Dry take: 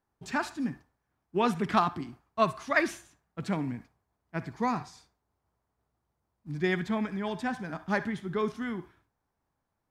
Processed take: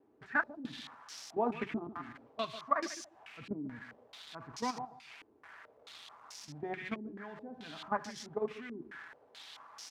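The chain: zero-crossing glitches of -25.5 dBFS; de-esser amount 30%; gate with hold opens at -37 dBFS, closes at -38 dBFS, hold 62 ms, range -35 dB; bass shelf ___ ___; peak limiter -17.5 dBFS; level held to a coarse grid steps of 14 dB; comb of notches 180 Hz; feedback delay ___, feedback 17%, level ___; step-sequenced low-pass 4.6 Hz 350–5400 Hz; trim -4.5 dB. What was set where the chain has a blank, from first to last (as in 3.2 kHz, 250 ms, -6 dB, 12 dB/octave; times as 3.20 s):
84 Hz, -8.5 dB, 143 ms, -12.5 dB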